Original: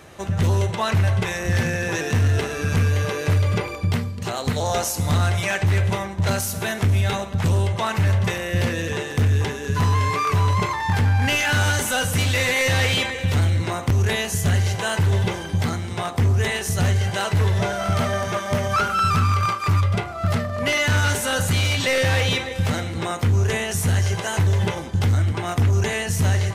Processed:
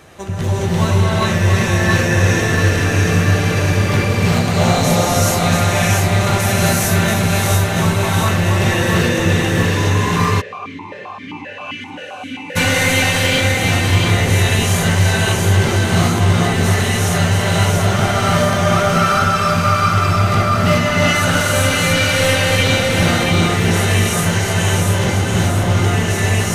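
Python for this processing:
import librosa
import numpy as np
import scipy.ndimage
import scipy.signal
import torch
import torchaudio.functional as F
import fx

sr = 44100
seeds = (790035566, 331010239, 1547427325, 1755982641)

y = fx.rider(x, sr, range_db=4, speed_s=0.5)
y = fx.echo_split(y, sr, split_hz=550.0, low_ms=298, high_ms=683, feedback_pct=52, wet_db=-3.5)
y = fx.rev_gated(y, sr, seeds[0], gate_ms=450, shape='rising', drr_db=-6.5)
y = fx.vowel_held(y, sr, hz=7.6, at=(10.4, 12.55), fade=0.02)
y = y * librosa.db_to_amplitude(-1.5)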